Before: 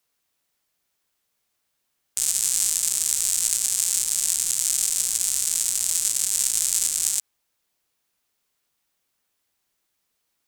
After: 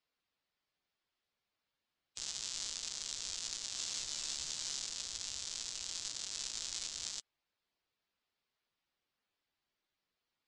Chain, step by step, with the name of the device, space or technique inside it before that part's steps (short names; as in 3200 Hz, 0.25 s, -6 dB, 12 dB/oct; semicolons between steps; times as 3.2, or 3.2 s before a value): clip after many re-uploads (LPF 5200 Hz 24 dB/oct; bin magnitudes rounded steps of 15 dB); 3.73–4.79 doubler 14 ms -3.5 dB; gain -7.5 dB